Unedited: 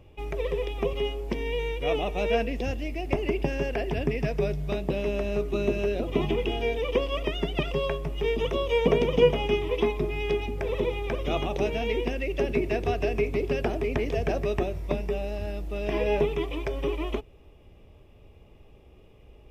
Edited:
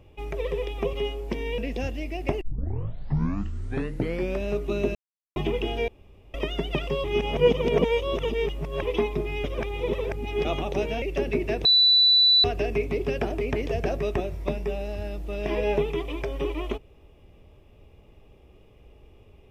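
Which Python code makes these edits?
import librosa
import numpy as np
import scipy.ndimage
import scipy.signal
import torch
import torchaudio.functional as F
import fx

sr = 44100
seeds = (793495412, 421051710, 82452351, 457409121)

y = fx.edit(x, sr, fx.cut(start_s=1.58, length_s=0.84),
    fx.tape_start(start_s=3.25, length_s=2.03),
    fx.silence(start_s=5.79, length_s=0.41),
    fx.room_tone_fill(start_s=6.72, length_s=0.46),
    fx.reverse_span(start_s=7.88, length_s=1.78),
    fx.reverse_span(start_s=10.28, length_s=1.01),
    fx.cut(start_s=11.86, length_s=0.38),
    fx.insert_tone(at_s=12.87, length_s=0.79, hz=3970.0, db=-14.5), tone=tone)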